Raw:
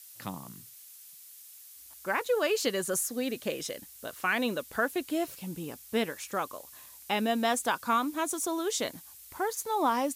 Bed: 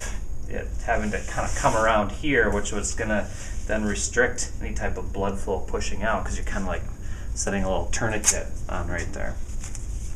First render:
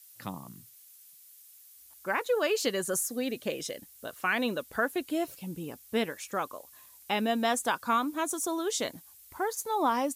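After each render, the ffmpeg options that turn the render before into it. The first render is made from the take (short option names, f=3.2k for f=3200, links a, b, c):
-af "afftdn=nr=6:nf=-51"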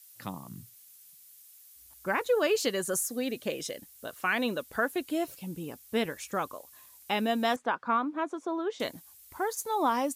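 -filter_complex "[0:a]asettb=1/sr,asplit=3[a][b][c];[a]atrim=end=0.514[d];[b]atrim=start=0.51:end=2.59,asetpts=PTS-STARTPTS,afade=t=in:d=0.004:c=qsin,afade=t=out:st=2.076:d=0.004:c=qsin,lowshelf=f=200:g=11.5[e];[c]atrim=start=2.586[f];[d][e]acrossfade=d=0.004:c1=hsin:c2=qsin[g];[g][f]acrossfade=d=0.004:c1=qsin:c2=hsin,asettb=1/sr,asplit=3[h][i][j];[h]atrim=end=6.054[k];[i]atrim=start=6.05:end=6.54,asetpts=PTS-STARTPTS,afade=t=in:d=0.004:c=qsin,afade=t=out:st=0.486:d=0.004:c=qsin,lowshelf=f=140:g=9.5[l];[j]atrim=start=6.536[m];[k][l]acrossfade=d=0.004:c1=hsin:c2=qsin[n];[n][m]acrossfade=d=0.004:c1=qsin:c2=hsin,asettb=1/sr,asplit=3[o][p][q];[o]atrim=end=7.564[r];[p]atrim=start=7.56:end=8.8,asetpts=PTS-STARTPTS,afade=t=in:d=0.004:c=qsin,afade=t=out:st=1.236:d=0.004:c=qsin,highpass=170,lowpass=2k[s];[q]atrim=start=8.796[t];[r][s]acrossfade=d=0.004:c1=hsin:c2=qsin[u];[u][t]acrossfade=d=0.004:c1=qsin:c2=hsin"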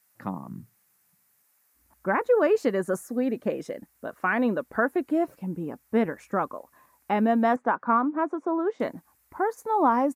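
-af "firequalizer=gain_entry='entry(100,0);entry(200,8);entry(440,5);entry(890,6);entry(1900,1);entry(3200,-15);entry(4800,-13)':delay=0.05:min_phase=1"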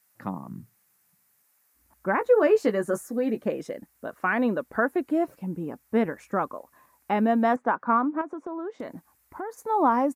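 -filter_complex "[0:a]asettb=1/sr,asplit=3[a][b][c];[a]atrim=end=2.194[d];[b]atrim=start=2.19:end=3.44,asetpts=PTS-STARTPTS,afade=t=in:d=0.004:c=qsin,afade=t=out:st=1.246:d=0.004:c=qsin,asplit=2[e][f];[f]adelay=14,volume=-7dB[g];[e][g]amix=inputs=2:normalize=0,atrim=end_sample=55125[h];[c]atrim=start=3.436[i];[d][h]acrossfade=d=0.004:c1=hsin:c2=qsin[j];[j][i]acrossfade=d=0.004:c1=qsin:c2=hsin,asettb=1/sr,asplit=3[k][l][m];[k]atrim=end=8.214[n];[l]atrim=start=8.21:end=9.62,asetpts=PTS-STARTPTS,afade=t=in:d=0.004:c=qsin,afade=t=out:st=1.406:d=0.004:c=qsin,acompressor=threshold=-31dB:ratio=5:attack=3.2:release=140:knee=1:detection=peak[o];[m]atrim=start=9.616[p];[n][o]acrossfade=d=0.004:c1=hsin:c2=qsin[q];[q][p]acrossfade=d=0.004:c1=qsin:c2=hsin"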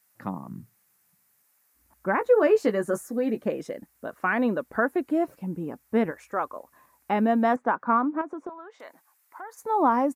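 -filter_complex "[0:a]asettb=1/sr,asplit=3[a][b][c];[a]atrim=end=6.114[d];[b]atrim=start=6.11:end=6.56,asetpts=PTS-STARTPTS,afade=t=in:d=0.004:c=qsin,afade=t=out:st=0.446:d=0.004:c=qsin,equalizer=f=190:w=1.1:g=-13.5[e];[c]atrim=start=6.556[f];[d][e]acrossfade=d=0.004:c1=hsin:c2=qsin[g];[g][f]acrossfade=d=0.004:c1=qsin:c2=hsin,asettb=1/sr,asplit=3[h][i][j];[h]atrim=end=8.494[k];[i]atrim=start=8.49:end=9.63,asetpts=PTS-STARTPTS,afade=t=in:d=0.004:c=qsin,afade=t=out:st=1.136:d=0.004:c=qsin,highpass=840[l];[j]atrim=start=9.626[m];[k][l]acrossfade=d=0.004:c1=hsin:c2=qsin[n];[n][m]acrossfade=d=0.004:c1=qsin:c2=hsin"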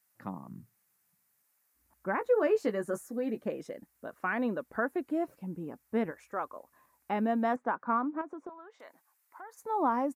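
-af "volume=-7dB"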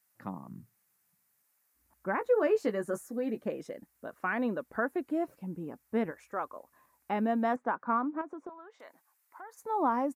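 -af anull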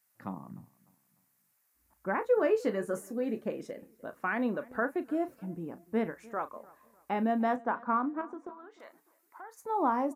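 -filter_complex "[0:a]asplit=2[a][b];[b]adelay=36,volume=-13dB[c];[a][c]amix=inputs=2:normalize=0,asplit=2[d][e];[e]adelay=300,lowpass=f=3.3k:p=1,volume=-22.5dB,asplit=2[f][g];[g]adelay=300,lowpass=f=3.3k:p=1,volume=0.37,asplit=2[h][i];[i]adelay=300,lowpass=f=3.3k:p=1,volume=0.37[j];[d][f][h][j]amix=inputs=4:normalize=0"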